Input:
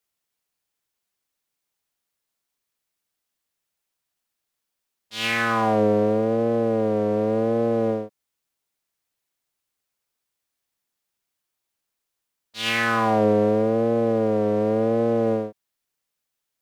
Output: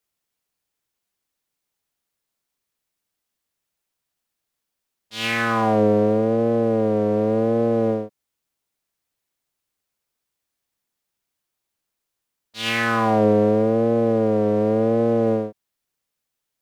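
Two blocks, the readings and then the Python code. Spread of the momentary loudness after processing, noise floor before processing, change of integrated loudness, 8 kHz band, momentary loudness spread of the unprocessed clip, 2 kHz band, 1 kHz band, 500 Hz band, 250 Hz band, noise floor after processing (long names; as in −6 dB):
7 LU, −82 dBFS, +2.0 dB, can't be measured, 8 LU, +0.5 dB, +1.0 dB, +2.0 dB, +3.0 dB, −82 dBFS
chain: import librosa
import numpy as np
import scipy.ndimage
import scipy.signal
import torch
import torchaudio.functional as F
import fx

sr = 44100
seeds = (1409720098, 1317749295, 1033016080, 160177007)

y = fx.low_shelf(x, sr, hz=500.0, db=3.5)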